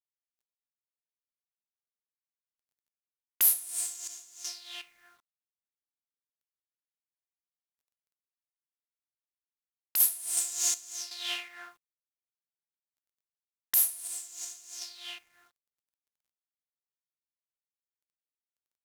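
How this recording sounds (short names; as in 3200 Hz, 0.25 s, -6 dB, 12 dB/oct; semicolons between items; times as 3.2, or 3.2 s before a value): random-step tremolo 2.7 Hz, depth 85%; a quantiser's noise floor 12-bit, dither none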